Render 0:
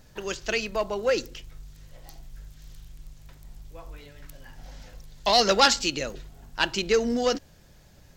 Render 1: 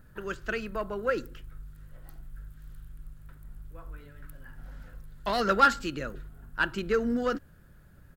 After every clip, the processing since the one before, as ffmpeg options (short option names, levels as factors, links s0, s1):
-af "firequalizer=gain_entry='entry(160,0);entry(800,-10);entry(1400,5);entry(2100,-9);entry(5900,-20);entry(9400,-4)':delay=0.05:min_phase=1"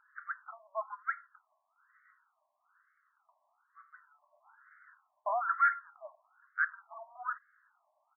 -af "aresample=16000,asoftclip=type=tanh:threshold=0.1,aresample=44100,afftfilt=real='re*between(b*sr/1024,800*pow(1600/800,0.5+0.5*sin(2*PI*1.1*pts/sr))/1.41,800*pow(1600/800,0.5+0.5*sin(2*PI*1.1*pts/sr))*1.41)':imag='im*between(b*sr/1024,800*pow(1600/800,0.5+0.5*sin(2*PI*1.1*pts/sr))/1.41,800*pow(1600/800,0.5+0.5*sin(2*PI*1.1*pts/sr))*1.41)':win_size=1024:overlap=0.75"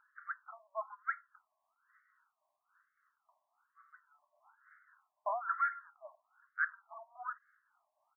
-af "tremolo=f=3.6:d=0.61,volume=0.841"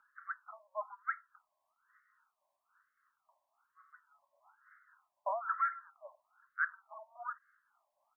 -af "afreqshift=-26"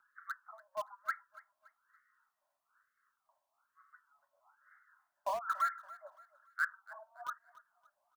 -filter_complex "[0:a]acrossover=split=920|970|1100[s0][s1][s2][s3];[s1]acrusher=bits=7:mix=0:aa=0.000001[s4];[s0][s4][s2][s3]amix=inputs=4:normalize=0,aecho=1:1:284|568|852:0.106|0.0392|0.0145"